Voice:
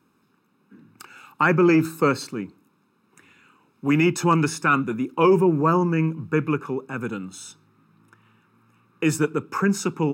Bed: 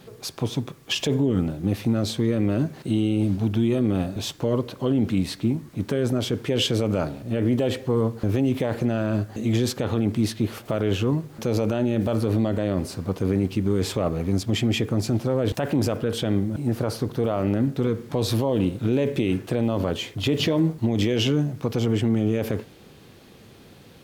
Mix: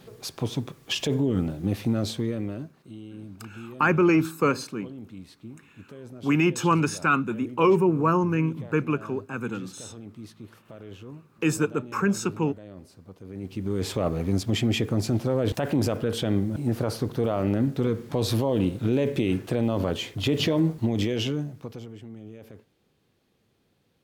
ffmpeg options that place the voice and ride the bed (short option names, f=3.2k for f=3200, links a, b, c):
-filter_complex "[0:a]adelay=2400,volume=-2.5dB[a];[1:a]volume=15.5dB,afade=t=out:st=2.01:d=0.73:silence=0.141254,afade=t=in:st=13.29:d=0.75:silence=0.125893,afade=t=out:st=20.78:d=1.12:silence=0.112202[b];[a][b]amix=inputs=2:normalize=0"